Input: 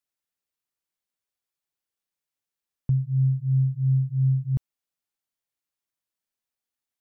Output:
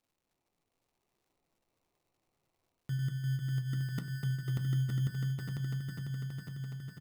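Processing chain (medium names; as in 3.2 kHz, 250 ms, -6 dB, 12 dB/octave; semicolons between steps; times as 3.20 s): backward echo that repeats 249 ms, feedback 81%, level -1 dB; high-pass 170 Hz 12 dB/octave; reverse; compression 16:1, threshold -33 dBFS, peak gain reduction 15 dB; reverse; sample-and-hold 27×; delay 915 ms -5.5 dB; on a send at -7.5 dB: reverberation RT60 0.25 s, pre-delay 3 ms; on the sum: crackle 240 per s -67 dBFS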